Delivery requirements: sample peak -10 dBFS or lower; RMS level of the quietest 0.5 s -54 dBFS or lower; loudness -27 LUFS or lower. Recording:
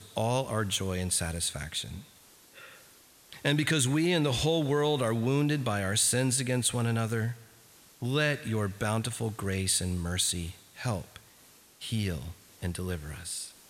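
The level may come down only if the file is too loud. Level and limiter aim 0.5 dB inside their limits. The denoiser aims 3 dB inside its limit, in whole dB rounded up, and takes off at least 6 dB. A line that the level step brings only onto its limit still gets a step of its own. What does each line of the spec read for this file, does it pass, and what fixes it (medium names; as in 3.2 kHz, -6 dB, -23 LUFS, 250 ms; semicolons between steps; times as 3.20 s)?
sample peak -12.0 dBFS: pass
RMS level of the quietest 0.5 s -58 dBFS: pass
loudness -29.5 LUFS: pass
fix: none needed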